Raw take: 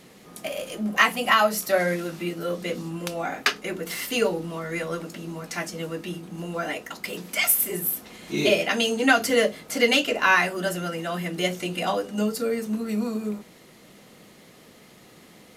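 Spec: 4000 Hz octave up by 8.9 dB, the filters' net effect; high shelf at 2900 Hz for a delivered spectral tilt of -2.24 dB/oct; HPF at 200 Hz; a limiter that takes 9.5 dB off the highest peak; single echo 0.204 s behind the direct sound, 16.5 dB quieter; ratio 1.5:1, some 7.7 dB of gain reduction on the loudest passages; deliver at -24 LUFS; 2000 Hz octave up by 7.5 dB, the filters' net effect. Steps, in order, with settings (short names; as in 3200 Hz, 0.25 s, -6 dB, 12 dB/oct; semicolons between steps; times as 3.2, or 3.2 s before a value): HPF 200 Hz; bell 2000 Hz +5.5 dB; high shelf 2900 Hz +7.5 dB; bell 4000 Hz +4 dB; compressor 1.5:1, threshold -30 dBFS; limiter -13.5 dBFS; echo 0.204 s -16.5 dB; gain +2.5 dB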